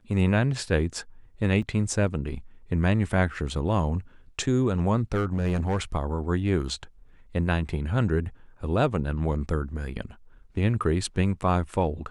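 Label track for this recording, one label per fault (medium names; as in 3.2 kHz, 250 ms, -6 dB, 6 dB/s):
1.620000	1.620000	dropout 4.1 ms
5.120000	5.790000	clipped -20.5 dBFS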